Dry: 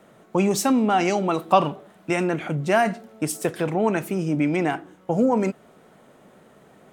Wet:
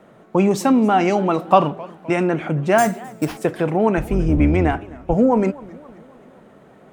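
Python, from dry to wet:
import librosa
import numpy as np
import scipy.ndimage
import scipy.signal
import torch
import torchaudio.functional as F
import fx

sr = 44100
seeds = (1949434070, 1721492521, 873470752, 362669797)

y = fx.octave_divider(x, sr, octaves=2, level_db=1.0, at=(3.97, 5.14))
y = fx.high_shelf(y, sr, hz=3500.0, db=-11.0)
y = fx.sample_hold(y, sr, seeds[0], rate_hz=8000.0, jitter_pct=0, at=(2.78, 3.37))
y = fx.echo_warbled(y, sr, ms=263, feedback_pct=52, rate_hz=2.8, cents=202, wet_db=-21.5)
y = F.gain(torch.from_numpy(y), 4.5).numpy()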